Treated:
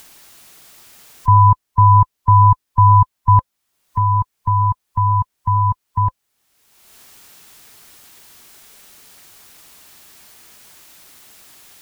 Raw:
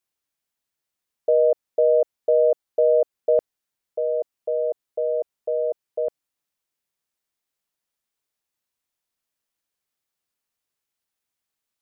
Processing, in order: band-swap scrambler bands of 500 Hz; notch 530 Hz, Q 12; in parallel at +1.5 dB: upward compressor, threshold -20 dBFS; on the sum: gain +1 dB

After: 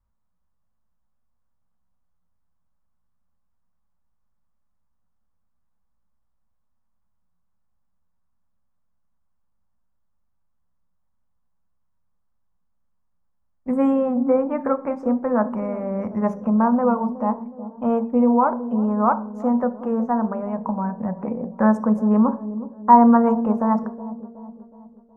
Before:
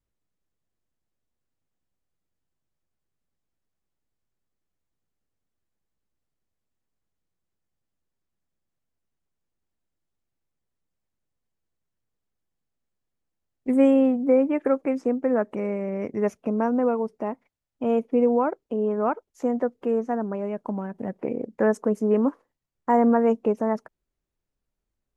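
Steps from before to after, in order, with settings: EQ curve 180 Hz 0 dB, 310 Hz -16 dB, 1100 Hz +4 dB, 2500 Hz -16 dB; dark delay 0.369 s, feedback 47%, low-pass 580 Hz, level -12 dB; on a send at -9.5 dB: reverb RT60 0.45 s, pre-delay 3 ms; on the sum: gain +7 dB

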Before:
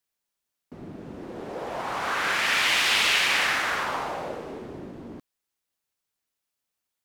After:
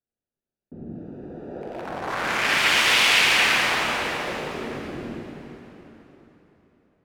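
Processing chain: Wiener smoothing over 41 samples; 0.95–1.89 tilt shelf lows -5.5 dB, about 690 Hz; plate-style reverb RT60 3.8 s, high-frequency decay 0.85×, DRR -2 dB; gain +2 dB

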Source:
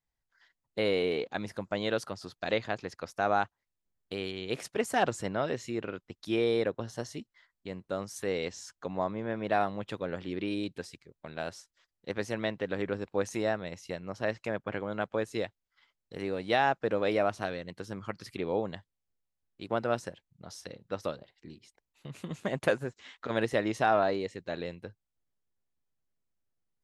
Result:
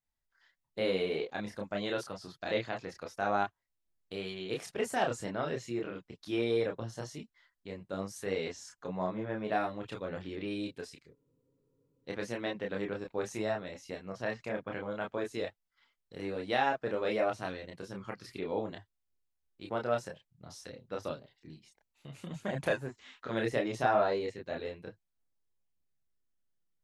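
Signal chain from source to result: chorus voices 4, 0.15 Hz, delay 29 ms, depth 4.1 ms; spectral freeze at 11.16, 0.90 s

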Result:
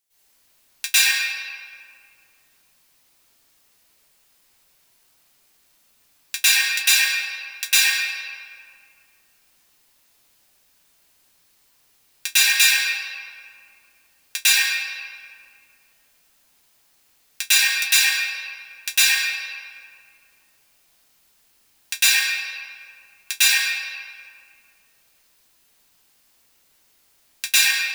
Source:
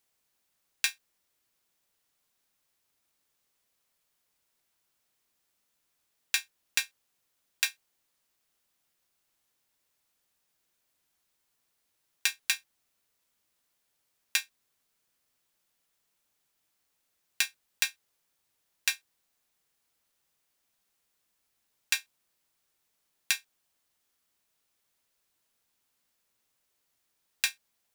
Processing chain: high shelf 2800 Hz +8 dB; reverb RT60 2.3 s, pre-delay 99 ms, DRR -20 dB; gain -6.5 dB

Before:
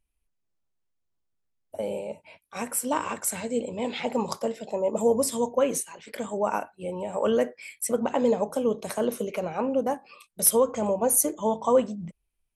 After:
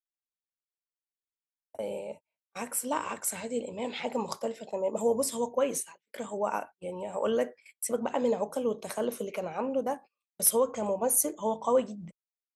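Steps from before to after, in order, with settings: gate -39 dBFS, range -36 dB; low shelf 210 Hz -5.5 dB; gain -3.5 dB

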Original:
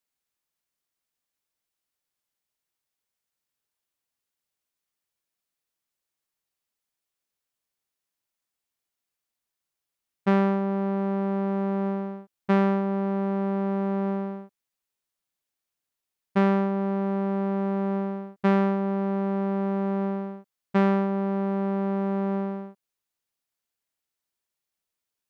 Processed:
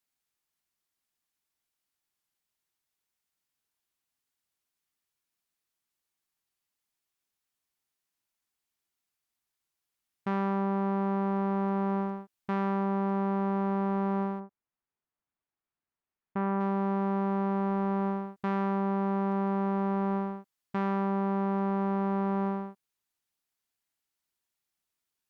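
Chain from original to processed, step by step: limiter -23.5 dBFS, peak gain reduction 11 dB; dynamic EQ 1000 Hz, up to +6 dB, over -49 dBFS, Q 1.4; 14.39–16.59 LPF 1400 Hz -> 1900 Hz 12 dB/oct; bell 530 Hz -6.5 dB 0.39 oct; AAC 192 kbps 48000 Hz

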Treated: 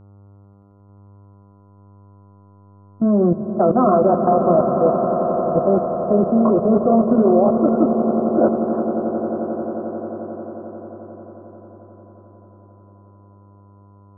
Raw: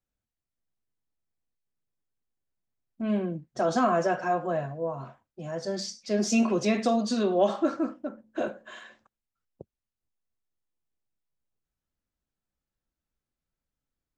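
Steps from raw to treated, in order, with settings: Chebyshev low-pass 1400 Hz, order 8; dynamic EQ 520 Hz, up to +7 dB, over -31 dBFS, Q 0.84; AGC gain up to 15 dB; rotary speaker horn 6 Hz; level quantiser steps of 21 dB; buzz 100 Hz, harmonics 14, -53 dBFS -8 dB/oct; swelling echo 89 ms, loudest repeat 8, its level -13 dB; gain +6.5 dB

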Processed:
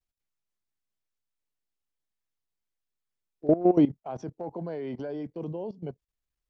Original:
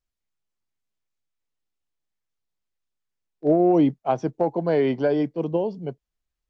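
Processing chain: level quantiser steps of 17 dB; dynamic EQ 2800 Hz, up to -3 dB, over -50 dBFS, Q 0.91

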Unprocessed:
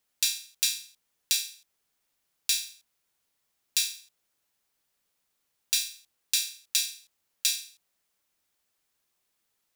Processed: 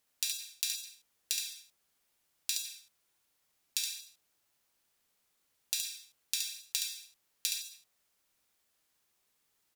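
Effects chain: compressor 10:1, threshold -30 dBFS, peak gain reduction 10 dB; wow and flutter 17 cents; echo 70 ms -5 dB

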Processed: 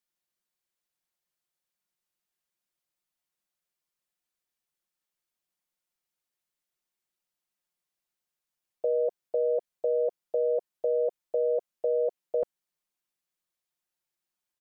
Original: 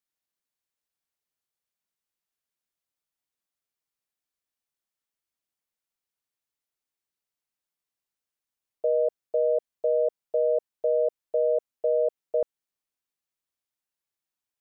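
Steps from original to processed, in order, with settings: comb 5.6 ms, depth 56%

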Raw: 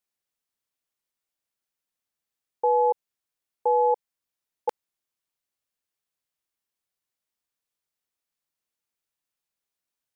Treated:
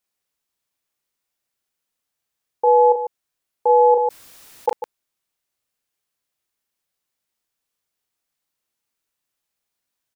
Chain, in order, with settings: loudspeakers at several distances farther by 12 m -6 dB, 50 m -9 dB; 3.91–4.69 fast leveller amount 50%; gain +5 dB

